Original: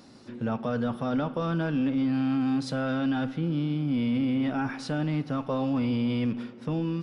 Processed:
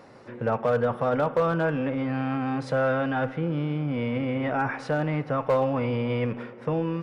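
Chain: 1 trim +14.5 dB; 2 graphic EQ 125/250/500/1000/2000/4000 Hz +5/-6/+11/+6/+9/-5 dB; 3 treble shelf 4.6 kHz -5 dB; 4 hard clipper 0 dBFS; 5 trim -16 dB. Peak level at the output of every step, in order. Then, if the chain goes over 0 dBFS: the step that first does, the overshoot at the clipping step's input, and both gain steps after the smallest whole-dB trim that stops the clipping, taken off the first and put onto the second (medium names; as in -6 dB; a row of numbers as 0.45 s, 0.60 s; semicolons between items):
-5.0 dBFS, +5.0 dBFS, +5.0 dBFS, 0.0 dBFS, -16.0 dBFS; step 2, 5.0 dB; step 1 +9.5 dB, step 5 -11 dB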